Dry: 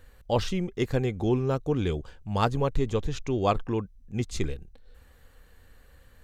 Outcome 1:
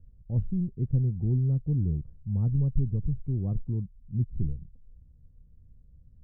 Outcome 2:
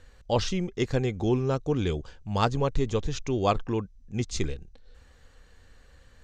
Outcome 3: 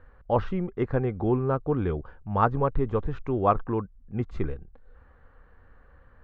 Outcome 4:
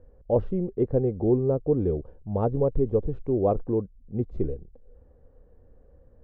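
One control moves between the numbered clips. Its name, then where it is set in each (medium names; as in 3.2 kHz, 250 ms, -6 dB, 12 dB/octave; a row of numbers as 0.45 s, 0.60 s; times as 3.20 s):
resonant low-pass, frequency: 150 Hz, 6.3 kHz, 1.3 kHz, 520 Hz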